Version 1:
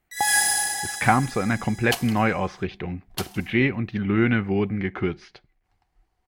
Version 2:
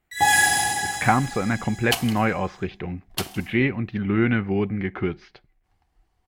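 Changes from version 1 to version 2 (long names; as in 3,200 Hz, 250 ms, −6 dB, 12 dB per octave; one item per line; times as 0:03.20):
speech: add high-frequency loss of the air 98 metres
second sound +3.5 dB
reverb: on, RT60 1.2 s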